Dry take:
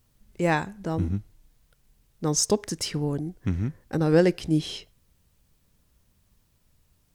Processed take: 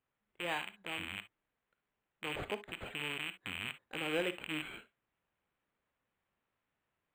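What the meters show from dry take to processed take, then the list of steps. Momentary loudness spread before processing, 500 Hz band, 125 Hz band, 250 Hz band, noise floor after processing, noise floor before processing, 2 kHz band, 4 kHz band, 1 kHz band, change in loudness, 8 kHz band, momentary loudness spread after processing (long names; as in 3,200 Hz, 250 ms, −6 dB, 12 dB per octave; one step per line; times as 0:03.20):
10 LU, −16.0 dB, −25.0 dB, −19.5 dB, below −85 dBFS, −67 dBFS, −3.5 dB, −6.5 dB, −11.5 dB, −13.5 dB, −24.5 dB, 8 LU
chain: loose part that buzzes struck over −37 dBFS, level −15 dBFS
high-pass filter 1,500 Hz 6 dB per octave
notch filter 6,500 Hz, Q 13
dynamic equaliser 5,600 Hz, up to −5 dB, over −42 dBFS, Q 2.4
speech leveller 2 s
high-frequency loss of the air 85 metres
reverb whose tail is shaped and stops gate 80 ms rising, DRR 11.5 dB
linearly interpolated sample-rate reduction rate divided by 8×
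level −5.5 dB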